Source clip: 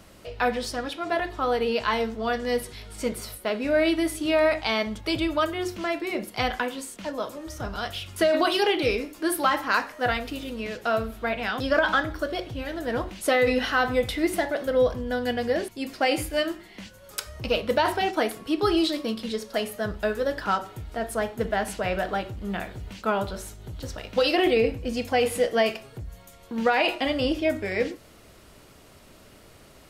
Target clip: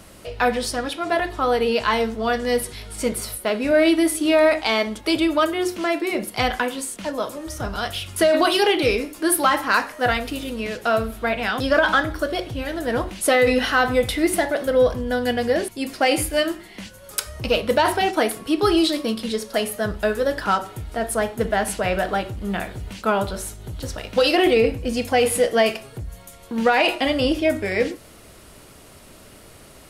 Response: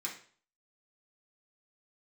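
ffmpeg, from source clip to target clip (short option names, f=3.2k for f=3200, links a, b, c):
-filter_complex "[0:a]asettb=1/sr,asplit=3[a][b][c];[a]atrim=end=3.714[d];[b]atrim=start=3.71:end=6.12,asetpts=PTS-STARTPTS,afade=t=in:d=0.004:c=qsin,afade=t=out:st=2.406:d=0.004:c=qsin,lowshelf=f=200:t=q:w=1.5:g=-8[e];[c]atrim=start=6.116[f];[d][e]acrossfade=d=0.004:c1=hsin:c2=qsin[g];[g][f]acrossfade=d=0.004:c1=qsin:c2=hsin,acontrast=78,equalizer=f=10k:t=o:w=0.59:g=6.5,volume=-2dB"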